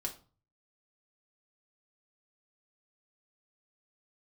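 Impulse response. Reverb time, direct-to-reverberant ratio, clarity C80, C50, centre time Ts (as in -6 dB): 0.40 s, 0.0 dB, 18.5 dB, 12.5 dB, 12 ms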